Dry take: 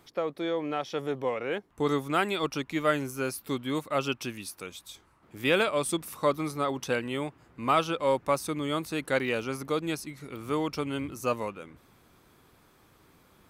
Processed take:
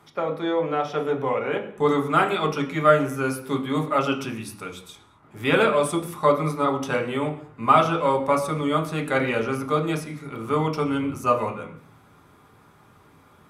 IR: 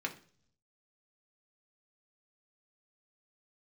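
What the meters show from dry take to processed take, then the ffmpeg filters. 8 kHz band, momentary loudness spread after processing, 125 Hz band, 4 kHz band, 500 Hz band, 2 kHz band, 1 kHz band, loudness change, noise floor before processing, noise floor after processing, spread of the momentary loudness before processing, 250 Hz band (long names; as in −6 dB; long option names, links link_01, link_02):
+0.5 dB, 11 LU, +8.5 dB, +1.5 dB, +6.5 dB, +5.0 dB, +8.5 dB, +6.5 dB, −62 dBFS, −55 dBFS, 11 LU, +6.0 dB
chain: -filter_complex "[1:a]atrim=start_sample=2205,afade=type=out:start_time=0.19:duration=0.01,atrim=end_sample=8820,asetrate=24255,aresample=44100[link_01];[0:a][link_01]afir=irnorm=-1:irlink=0"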